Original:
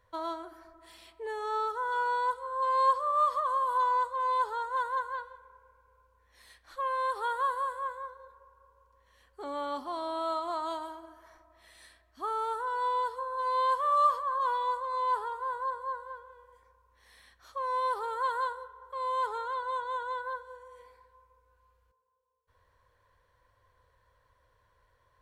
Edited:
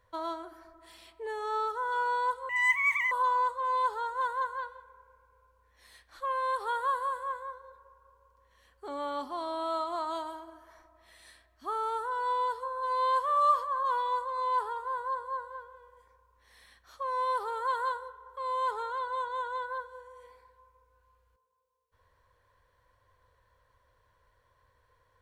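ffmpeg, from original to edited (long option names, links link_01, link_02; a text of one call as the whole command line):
ffmpeg -i in.wav -filter_complex "[0:a]asplit=3[link_01][link_02][link_03];[link_01]atrim=end=2.494[link_04];[link_02]atrim=start=2.49:end=3.67,asetpts=PTS-STARTPTS,asetrate=83349,aresample=44100,atrim=end_sample=27533,asetpts=PTS-STARTPTS[link_05];[link_03]atrim=start=3.666[link_06];[link_04][link_05]acrossfade=duration=0.004:curve1=hsin:curve2=hsin[link_07];[link_07][link_06]acrossfade=duration=0.004:curve1=hsin:curve2=hsin" out.wav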